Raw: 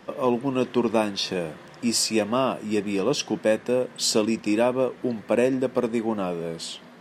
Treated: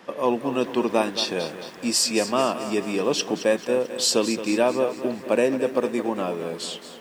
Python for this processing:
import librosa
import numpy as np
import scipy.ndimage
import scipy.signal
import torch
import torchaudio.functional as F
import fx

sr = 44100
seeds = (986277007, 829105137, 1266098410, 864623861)

y = fx.highpass(x, sr, hz=280.0, slope=6)
y = fx.echo_crushed(y, sr, ms=220, feedback_pct=55, bits=8, wet_db=-11.5)
y = y * librosa.db_to_amplitude(2.0)